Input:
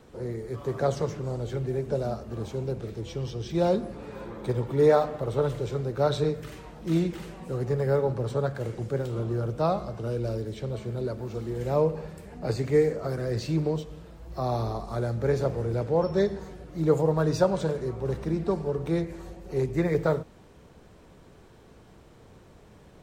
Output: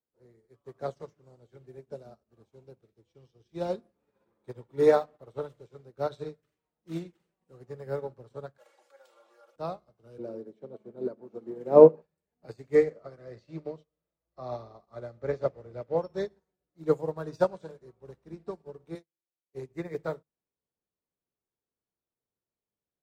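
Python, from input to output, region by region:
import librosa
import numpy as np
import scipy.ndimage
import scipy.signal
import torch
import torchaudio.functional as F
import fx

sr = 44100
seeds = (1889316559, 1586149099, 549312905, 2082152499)

y = fx.chain(x, sr, fx.highpass(hz=640.0, slope=24),
    fx.comb(ms=3.6, depth=0.95),
    fx.env_flatten(amount_pct=70), at=(8.58, 9.56))
y = fx.chain(y, sr, fx.highpass(hz=190.0, slope=24),
    fx.tilt_shelf(db=9.5, hz=1400.0), at=(10.18, 12.02))
y = fx.chain(y, sr, fx.lowpass(hz=5700.0, slope=12),
    fx.small_body(hz=(590.0, 1200.0, 2000.0), ring_ms=25, db=7), at=(12.75, 15.98))
y = fx.chain(y, sr, fx.highpass(hz=210.0, slope=12),
    fx.high_shelf(hz=4600.0, db=11.0),
    fx.upward_expand(threshold_db=-39.0, expansion=2.5), at=(18.95, 19.55))
y = fx.low_shelf(y, sr, hz=110.0, db=-8.0)
y = fx.hum_notches(y, sr, base_hz=50, count=4)
y = fx.upward_expand(y, sr, threshold_db=-45.0, expansion=2.5)
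y = F.gain(torch.from_numpy(y), 5.5).numpy()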